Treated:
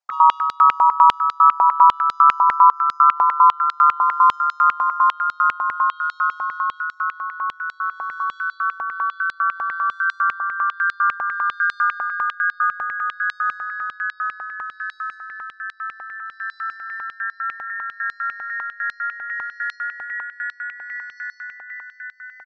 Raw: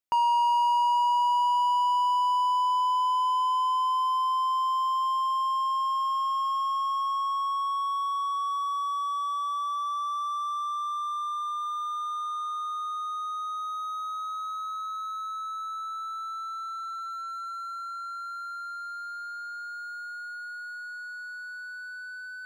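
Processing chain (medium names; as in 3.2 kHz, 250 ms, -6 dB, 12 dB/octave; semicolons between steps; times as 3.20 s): resonances exaggerated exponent 2; resonant high shelf 3.9 kHz +7 dB, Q 1.5; band-stop 3 kHz, Q 5; comb 5 ms, depth 45%; harmony voices +3 st -4 dB, +5 st -2 dB; distance through air 140 m; feedback delay 178 ms, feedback 59%, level -22.5 dB; step-sequenced high-pass 10 Hz 790–4000 Hz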